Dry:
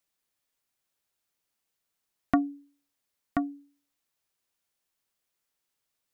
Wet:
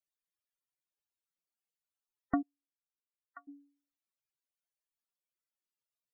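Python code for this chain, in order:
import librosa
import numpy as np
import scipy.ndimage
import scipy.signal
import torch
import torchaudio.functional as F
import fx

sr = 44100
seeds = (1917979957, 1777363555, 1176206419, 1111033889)

y = fx.spec_topn(x, sr, count=64)
y = fx.ladder_bandpass(y, sr, hz=1500.0, resonance_pct=50, at=(2.41, 3.47), fade=0.02)
y = y * 10.0 ** (-7.0 / 20.0)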